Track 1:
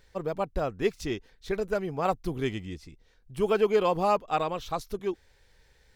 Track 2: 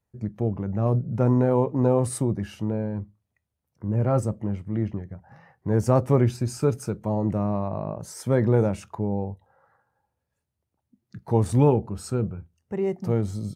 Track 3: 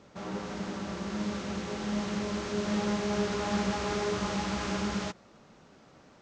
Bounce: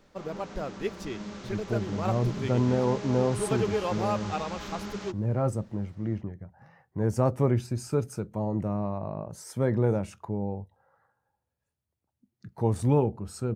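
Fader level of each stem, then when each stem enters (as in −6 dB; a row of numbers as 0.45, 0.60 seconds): −5.5, −4.5, −6.0 decibels; 0.00, 1.30, 0.00 seconds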